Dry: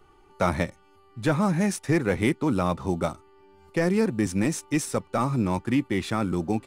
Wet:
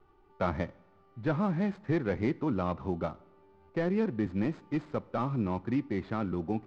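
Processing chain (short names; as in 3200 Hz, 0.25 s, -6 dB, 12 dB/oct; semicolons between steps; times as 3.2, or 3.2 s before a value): median filter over 15 samples; Bessel low-pass 3300 Hz, order 4; two-slope reverb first 0.66 s, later 3.3 s, from -18 dB, DRR 19.5 dB; gain -6 dB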